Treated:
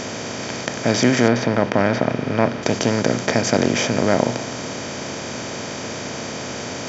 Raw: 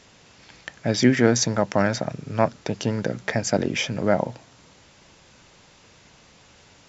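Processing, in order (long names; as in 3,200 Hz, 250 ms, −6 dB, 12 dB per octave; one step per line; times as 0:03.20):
compressor on every frequency bin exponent 0.4
0:01.28–0:02.63: low-pass filter 3,000 Hz 12 dB per octave
level −1.5 dB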